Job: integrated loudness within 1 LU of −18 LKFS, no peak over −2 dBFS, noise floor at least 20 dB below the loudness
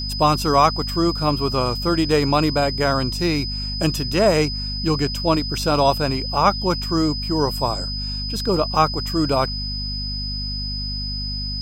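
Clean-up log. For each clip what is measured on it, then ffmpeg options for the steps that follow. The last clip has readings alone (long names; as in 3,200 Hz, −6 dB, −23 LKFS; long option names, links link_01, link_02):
mains hum 50 Hz; hum harmonics up to 250 Hz; level of the hum −26 dBFS; interfering tone 5,000 Hz; level of the tone −27 dBFS; integrated loudness −20.5 LKFS; sample peak −3.0 dBFS; target loudness −18.0 LKFS
→ -af "bandreject=frequency=50:width_type=h:width=4,bandreject=frequency=100:width_type=h:width=4,bandreject=frequency=150:width_type=h:width=4,bandreject=frequency=200:width_type=h:width=4,bandreject=frequency=250:width_type=h:width=4"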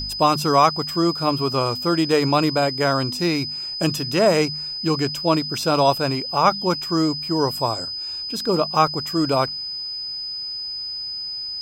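mains hum none found; interfering tone 5,000 Hz; level of the tone −27 dBFS
→ -af "bandreject=frequency=5000:width=30"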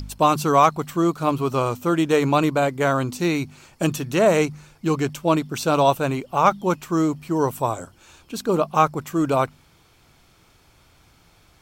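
interfering tone none found; integrated loudness −21.5 LKFS; sample peak −4.0 dBFS; target loudness −18.0 LKFS
→ -af "volume=3.5dB,alimiter=limit=-2dB:level=0:latency=1"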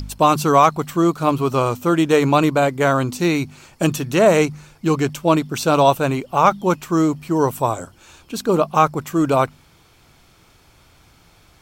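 integrated loudness −18.0 LKFS; sample peak −2.0 dBFS; background noise floor −53 dBFS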